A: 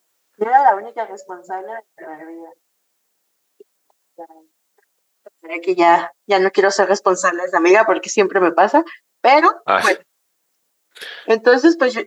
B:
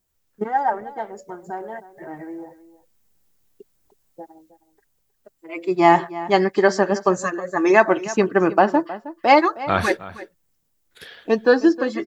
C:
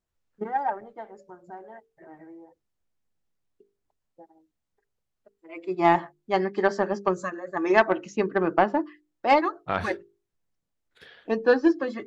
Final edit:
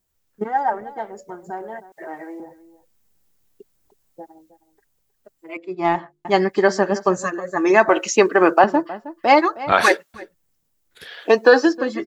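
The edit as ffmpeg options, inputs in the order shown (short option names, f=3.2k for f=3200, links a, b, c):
-filter_complex "[0:a]asplit=4[a][b][c][d];[1:a]asplit=6[e][f][g][h][i][j];[e]atrim=end=1.922[k];[a]atrim=start=1.918:end=2.402[l];[f]atrim=start=2.398:end=5.572[m];[2:a]atrim=start=5.568:end=6.252[n];[g]atrim=start=6.248:end=7.892[o];[b]atrim=start=7.888:end=8.642[p];[h]atrim=start=8.638:end=9.722[q];[c]atrim=start=9.718:end=10.142[r];[i]atrim=start=10.138:end=11.27[s];[d]atrim=start=11.03:end=11.8[t];[j]atrim=start=11.56[u];[k][l]acrossfade=d=0.004:c1=hsin:c2=hsin[v];[v][m]acrossfade=d=0.004:c1=hsin:c2=hsin[w];[w][n]acrossfade=d=0.004:c1=hsin:c2=hsin[x];[x][o]acrossfade=d=0.004:c1=hsin:c2=hsin[y];[y][p]acrossfade=d=0.004:c1=hsin:c2=hsin[z];[z][q]acrossfade=d=0.004:c1=hsin:c2=hsin[aa];[aa][r]acrossfade=d=0.004:c1=hsin:c2=hsin[ab];[ab][s]acrossfade=d=0.004:c1=hsin:c2=hsin[ac];[ac][t]acrossfade=d=0.24:c1=tri:c2=tri[ad];[ad][u]acrossfade=d=0.24:c1=tri:c2=tri"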